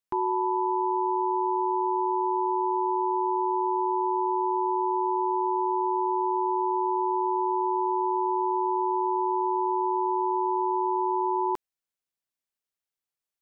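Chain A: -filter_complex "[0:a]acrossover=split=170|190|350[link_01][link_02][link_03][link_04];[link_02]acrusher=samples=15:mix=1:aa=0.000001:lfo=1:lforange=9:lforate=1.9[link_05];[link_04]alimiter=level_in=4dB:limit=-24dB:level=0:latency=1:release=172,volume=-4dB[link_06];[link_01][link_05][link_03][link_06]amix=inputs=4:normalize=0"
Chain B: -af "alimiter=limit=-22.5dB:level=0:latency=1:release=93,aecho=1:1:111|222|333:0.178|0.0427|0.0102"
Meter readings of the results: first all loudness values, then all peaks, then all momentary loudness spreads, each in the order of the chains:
−32.0, −30.0 LKFS; −24.0, −22.5 dBFS; 0, 0 LU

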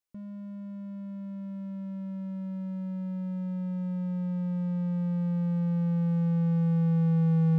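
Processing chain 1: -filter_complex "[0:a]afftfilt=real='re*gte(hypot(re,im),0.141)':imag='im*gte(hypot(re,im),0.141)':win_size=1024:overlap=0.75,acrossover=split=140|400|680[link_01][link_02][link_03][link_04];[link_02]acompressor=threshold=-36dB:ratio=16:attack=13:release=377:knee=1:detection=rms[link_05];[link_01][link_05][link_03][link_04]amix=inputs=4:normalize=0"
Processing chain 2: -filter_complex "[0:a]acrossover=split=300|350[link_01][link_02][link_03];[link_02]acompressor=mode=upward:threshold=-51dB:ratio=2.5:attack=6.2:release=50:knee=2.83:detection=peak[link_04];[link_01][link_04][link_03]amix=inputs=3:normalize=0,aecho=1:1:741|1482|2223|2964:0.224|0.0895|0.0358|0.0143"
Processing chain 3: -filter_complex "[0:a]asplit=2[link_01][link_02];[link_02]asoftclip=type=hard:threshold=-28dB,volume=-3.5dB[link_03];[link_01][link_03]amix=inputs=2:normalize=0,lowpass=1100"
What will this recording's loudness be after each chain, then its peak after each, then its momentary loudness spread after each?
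−34.0, −29.5, −26.5 LKFS; −24.5, −17.0, −16.5 dBFS; 12, 14, 13 LU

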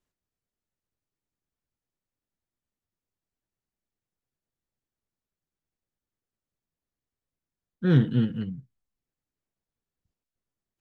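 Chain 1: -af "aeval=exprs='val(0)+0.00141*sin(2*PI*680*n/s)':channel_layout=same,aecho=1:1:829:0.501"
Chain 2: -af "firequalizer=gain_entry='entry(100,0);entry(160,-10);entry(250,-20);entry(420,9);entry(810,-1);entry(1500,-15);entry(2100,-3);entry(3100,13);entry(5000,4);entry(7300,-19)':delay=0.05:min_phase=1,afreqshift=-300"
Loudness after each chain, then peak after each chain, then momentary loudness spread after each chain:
−26.5, −29.5 LKFS; −9.0, −12.5 dBFS; 19, 14 LU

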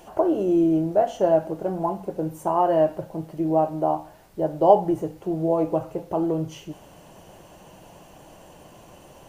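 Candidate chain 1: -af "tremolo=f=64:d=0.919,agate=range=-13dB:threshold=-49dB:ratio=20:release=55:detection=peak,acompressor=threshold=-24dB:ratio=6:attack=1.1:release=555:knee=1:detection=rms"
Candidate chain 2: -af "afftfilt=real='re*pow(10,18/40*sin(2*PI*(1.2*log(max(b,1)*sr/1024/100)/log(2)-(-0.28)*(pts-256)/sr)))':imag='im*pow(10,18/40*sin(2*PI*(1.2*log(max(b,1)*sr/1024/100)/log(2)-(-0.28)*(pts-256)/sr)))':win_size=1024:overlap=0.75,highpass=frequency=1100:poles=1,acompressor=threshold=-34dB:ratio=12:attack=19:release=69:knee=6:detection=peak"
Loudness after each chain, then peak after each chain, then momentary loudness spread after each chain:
−35.5, −37.5 LKFS; −19.0, −20.5 dBFS; 9, 14 LU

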